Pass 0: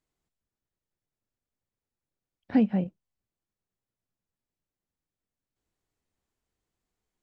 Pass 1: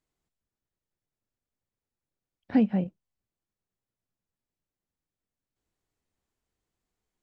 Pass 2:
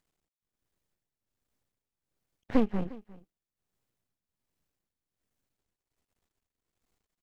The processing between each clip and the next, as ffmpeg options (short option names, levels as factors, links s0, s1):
-af anull
-af "tremolo=f=1.3:d=0.7,aecho=1:1:354:0.0944,aeval=exprs='max(val(0),0)':c=same,volume=2.66"